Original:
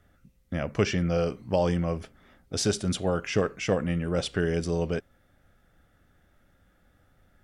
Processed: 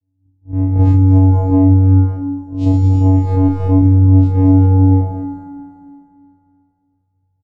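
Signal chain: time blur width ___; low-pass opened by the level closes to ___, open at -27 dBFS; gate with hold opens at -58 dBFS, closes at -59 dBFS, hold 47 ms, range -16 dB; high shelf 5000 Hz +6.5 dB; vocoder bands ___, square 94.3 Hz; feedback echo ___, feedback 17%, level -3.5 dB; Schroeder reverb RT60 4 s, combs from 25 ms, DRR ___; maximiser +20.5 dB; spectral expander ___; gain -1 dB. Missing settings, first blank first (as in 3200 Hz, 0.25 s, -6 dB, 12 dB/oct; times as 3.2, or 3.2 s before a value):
0.117 s, 540 Hz, 4, 0.231 s, 1.5 dB, 1.5:1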